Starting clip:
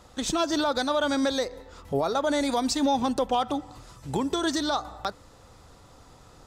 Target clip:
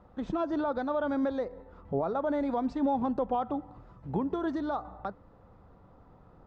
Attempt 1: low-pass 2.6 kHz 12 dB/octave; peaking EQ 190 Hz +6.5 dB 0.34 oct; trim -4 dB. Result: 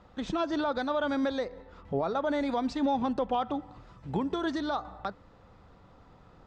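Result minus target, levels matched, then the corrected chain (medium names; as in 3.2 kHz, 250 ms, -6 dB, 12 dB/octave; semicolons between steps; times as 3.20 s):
2 kHz band +5.0 dB
low-pass 1.2 kHz 12 dB/octave; peaking EQ 190 Hz +6.5 dB 0.34 oct; trim -4 dB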